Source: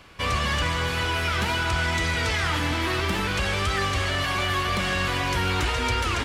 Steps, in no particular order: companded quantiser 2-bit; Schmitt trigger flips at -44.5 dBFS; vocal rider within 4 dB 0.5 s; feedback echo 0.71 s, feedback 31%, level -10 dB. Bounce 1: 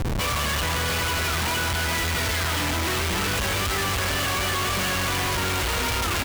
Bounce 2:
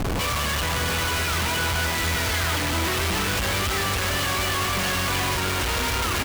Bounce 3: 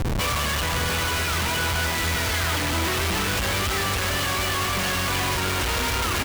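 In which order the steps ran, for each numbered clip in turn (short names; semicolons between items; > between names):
feedback echo > Schmitt trigger > vocal rider > companded quantiser; vocal rider > Schmitt trigger > companded quantiser > feedback echo; Schmitt trigger > companded quantiser > vocal rider > feedback echo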